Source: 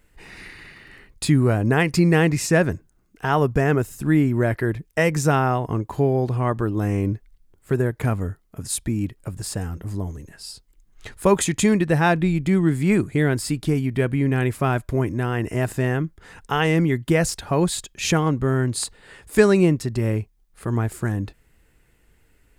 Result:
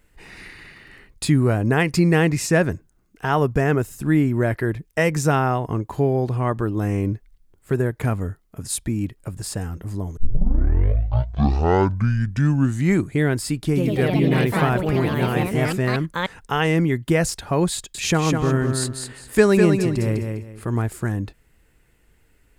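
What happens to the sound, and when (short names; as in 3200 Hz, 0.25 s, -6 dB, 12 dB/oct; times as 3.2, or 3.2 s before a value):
10.17 tape start 2.96 s
13.66–16.64 echoes that change speed 98 ms, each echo +3 st, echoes 3
17.74–20.82 feedback echo 0.202 s, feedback 25%, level -5.5 dB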